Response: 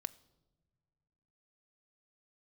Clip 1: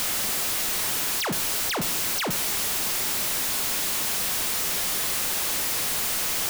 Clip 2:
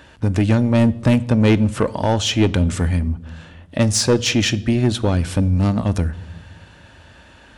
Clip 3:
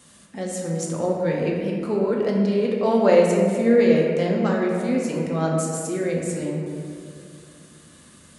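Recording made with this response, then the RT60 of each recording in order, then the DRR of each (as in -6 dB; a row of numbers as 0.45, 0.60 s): 2; 0.65 s, not exponential, 2.4 s; 13.0, 13.5, -2.0 dB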